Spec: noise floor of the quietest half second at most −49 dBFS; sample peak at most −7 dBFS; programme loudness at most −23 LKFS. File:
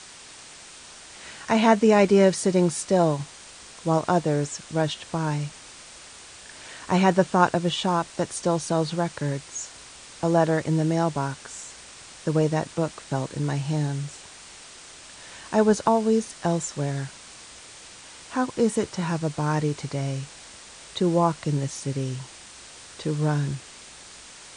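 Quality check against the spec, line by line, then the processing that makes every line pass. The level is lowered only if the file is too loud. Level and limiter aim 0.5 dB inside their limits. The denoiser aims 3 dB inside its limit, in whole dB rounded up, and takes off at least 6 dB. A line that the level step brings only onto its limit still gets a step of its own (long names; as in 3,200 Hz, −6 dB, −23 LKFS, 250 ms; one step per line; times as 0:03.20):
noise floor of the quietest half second −45 dBFS: out of spec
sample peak −4.5 dBFS: out of spec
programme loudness −24.5 LKFS: in spec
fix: broadband denoise 7 dB, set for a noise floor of −45 dBFS
brickwall limiter −7.5 dBFS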